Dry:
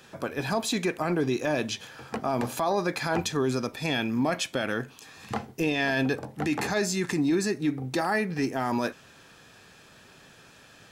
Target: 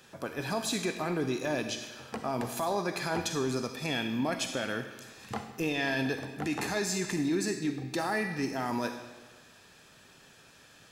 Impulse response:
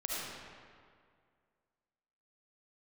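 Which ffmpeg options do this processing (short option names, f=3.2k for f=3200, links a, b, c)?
-filter_complex "[0:a]asplit=2[a][b];[1:a]atrim=start_sample=2205,asetrate=66150,aresample=44100,highshelf=f=2.9k:g=12[c];[b][c]afir=irnorm=-1:irlink=0,volume=-8.5dB[d];[a][d]amix=inputs=2:normalize=0,volume=-6.5dB"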